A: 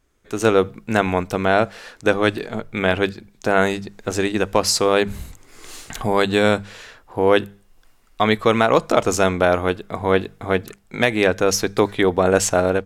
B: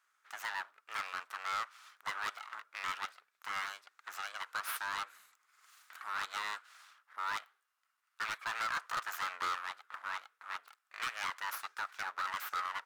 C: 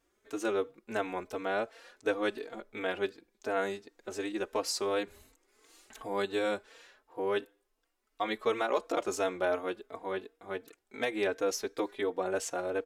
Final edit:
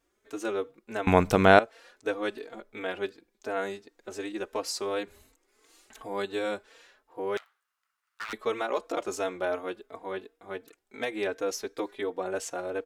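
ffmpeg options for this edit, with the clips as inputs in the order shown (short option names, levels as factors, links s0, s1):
-filter_complex "[2:a]asplit=3[s0][s1][s2];[s0]atrim=end=1.072[s3];[0:a]atrim=start=1.068:end=1.592[s4];[s1]atrim=start=1.588:end=7.372[s5];[1:a]atrim=start=7.368:end=8.332[s6];[s2]atrim=start=8.328[s7];[s3][s4]acrossfade=d=0.004:c1=hsin:c2=hsin[s8];[s8][s5]acrossfade=d=0.004:c1=hsin:c2=hsin[s9];[s9][s6]acrossfade=d=0.004:c1=hsin:c2=hsin[s10];[s10][s7]acrossfade=d=0.004:c1=hsin:c2=hsin"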